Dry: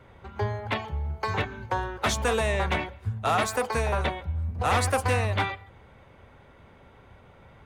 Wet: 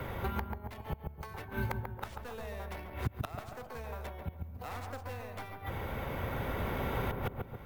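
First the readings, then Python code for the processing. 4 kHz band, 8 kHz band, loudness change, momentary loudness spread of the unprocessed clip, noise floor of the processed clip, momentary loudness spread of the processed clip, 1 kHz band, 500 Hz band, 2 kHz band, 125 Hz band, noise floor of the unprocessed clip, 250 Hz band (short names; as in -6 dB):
-15.5 dB, -21.0 dB, -12.0 dB, 7 LU, -50 dBFS, 8 LU, -12.5 dB, -11.5 dB, -12.5 dB, -8.5 dB, -54 dBFS, -6.0 dB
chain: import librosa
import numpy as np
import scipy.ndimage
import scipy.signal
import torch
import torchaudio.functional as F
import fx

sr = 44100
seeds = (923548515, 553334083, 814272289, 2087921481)

p1 = fx.tracing_dist(x, sr, depth_ms=0.24)
p2 = fx.recorder_agc(p1, sr, target_db=-20.5, rise_db_per_s=10.0, max_gain_db=30)
p3 = fx.gate_flip(p2, sr, shuts_db=-25.0, range_db=-31)
p4 = p3 + fx.echo_filtered(p3, sr, ms=139, feedback_pct=39, hz=1100.0, wet_db=-4.0, dry=0)
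p5 = np.repeat(p4[::3], 3)[:len(p4)]
p6 = fx.band_squash(p5, sr, depth_pct=70)
y = p6 * 10.0 ** (5.5 / 20.0)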